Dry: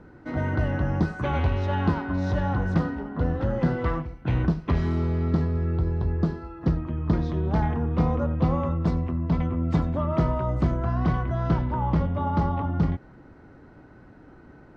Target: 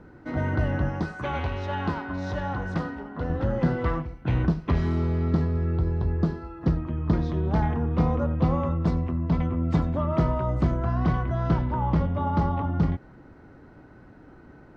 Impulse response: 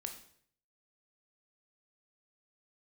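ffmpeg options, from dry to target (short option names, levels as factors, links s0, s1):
-filter_complex "[0:a]asettb=1/sr,asplit=3[s0][s1][s2];[s0]atrim=end=0.894[s3];[s1]atrim=start=0.89:end=3.3,asetpts=PTS-STARTPTS,afade=t=in:d=0.004:c=qsin,afade=t=out:st=2.406:d=0.004:c=qsin,lowshelf=f=390:g=-7[s4];[s2]atrim=start=3.296[s5];[s3][s4]acrossfade=d=0.004:c1=hsin:c2=qsin[s6];[s6][s5]acrossfade=d=0.004:c1=qsin:c2=hsin"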